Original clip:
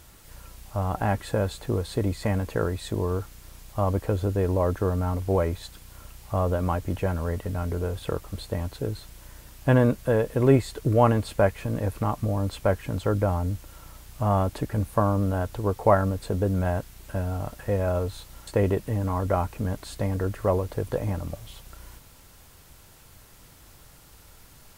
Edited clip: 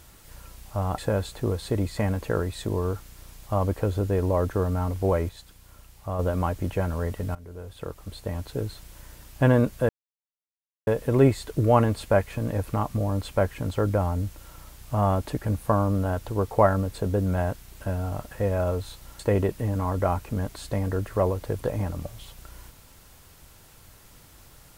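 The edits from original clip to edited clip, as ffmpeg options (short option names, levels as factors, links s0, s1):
-filter_complex "[0:a]asplit=6[s0][s1][s2][s3][s4][s5];[s0]atrim=end=0.982[s6];[s1]atrim=start=1.238:end=5.552[s7];[s2]atrim=start=5.548:end=6.452,asetpts=PTS-STARTPTS,volume=0.531[s8];[s3]atrim=start=6.448:end=7.61,asetpts=PTS-STARTPTS,afade=t=out:st=1.158:d=0.004:c=hsin:silence=0.112202[s9];[s4]atrim=start=7.61:end=10.15,asetpts=PTS-STARTPTS,afade=t=in:d=1.24:silence=0.112202,afade=t=out:st=2.536:d=0.004:c=hsin,apad=pad_dur=0.98[s10];[s5]atrim=start=10.15,asetpts=PTS-STARTPTS,afade=t=in:d=0.004:c=hsin[s11];[s6][s7]acrossfade=d=0.004:c1=hsin:c2=hsin[s12];[s12][s8]acrossfade=d=0.004:c1=hsin:c2=hsin[s13];[s9][s10][s11]concat=n=3:v=0:a=1[s14];[s13][s14]acrossfade=d=0.004:c1=hsin:c2=hsin"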